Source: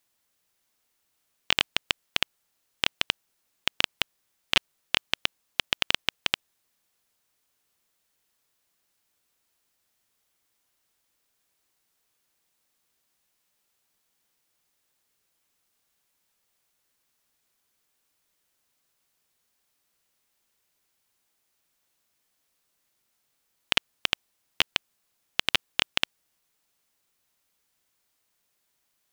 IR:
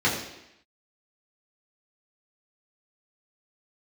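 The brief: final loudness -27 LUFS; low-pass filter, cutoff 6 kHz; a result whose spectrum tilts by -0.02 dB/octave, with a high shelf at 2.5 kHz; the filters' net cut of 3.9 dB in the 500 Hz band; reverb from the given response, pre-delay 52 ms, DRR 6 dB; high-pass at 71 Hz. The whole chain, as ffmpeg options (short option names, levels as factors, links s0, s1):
-filter_complex "[0:a]highpass=71,lowpass=6000,equalizer=f=500:t=o:g=-5.5,highshelf=f=2500:g=7,asplit=2[s0][s1];[1:a]atrim=start_sample=2205,adelay=52[s2];[s1][s2]afir=irnorm=-1:irlink=0,volume=0.0841[s3];[s0][s3]amix=inputs=2:normalize=0,volume=0.708"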